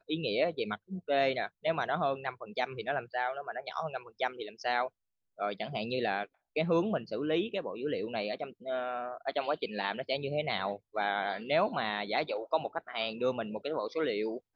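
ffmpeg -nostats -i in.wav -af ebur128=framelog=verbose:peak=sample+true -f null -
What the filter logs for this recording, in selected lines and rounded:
Integrated loudness:
  I:         -33.5 LUFS
  Threshold: -43.5 LUFS
Loudness range:
  LRA:         2.9 LU
  Threshold: -53.7 LUFS
  LRA low:   -35.5 LUFS
  LRA high:  -32.6 LUFS
Sample peak:
  Peak:      -15.1 dBFS
True peak:
  Peak:      -15.1 dBFS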